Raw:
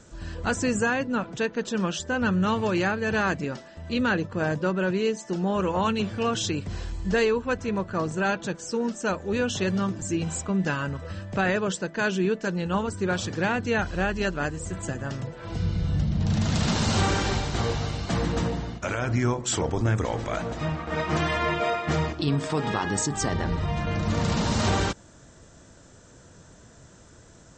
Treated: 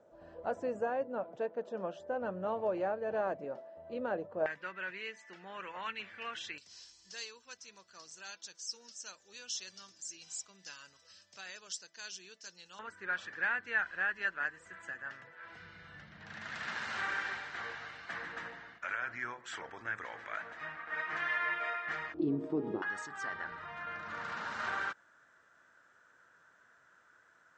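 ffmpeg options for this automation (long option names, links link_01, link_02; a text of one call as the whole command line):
ffmpeg -i in.wav -af "asetnsamples=nb_out_samples=441:pad=0,asendcmd='4.46 bandpass f 2000;6.58 bandpass f 5400;12.79 bandpass f 1700;22.14 bandpass f 340;22.82 bandpass f 1500',bandpass=frequency=620:width_type=q:width=3.7:csg=0" out.wav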